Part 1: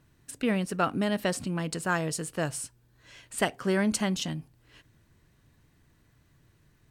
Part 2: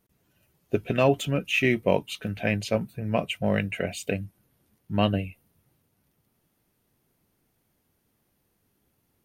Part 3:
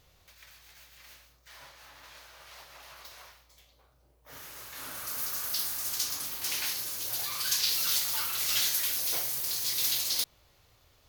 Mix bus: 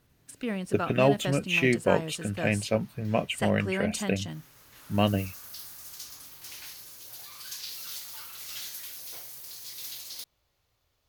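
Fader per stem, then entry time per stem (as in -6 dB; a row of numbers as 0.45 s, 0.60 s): -5.0 dB, -1.0 dB, -11.0 dB; 0.00 s, 0.00 s, 0.00 s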